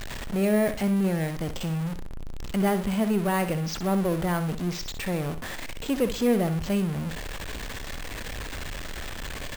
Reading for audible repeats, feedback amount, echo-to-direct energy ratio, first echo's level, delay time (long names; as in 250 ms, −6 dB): 3, 28%, −10.5 dB, −11.0 dB, 62 ms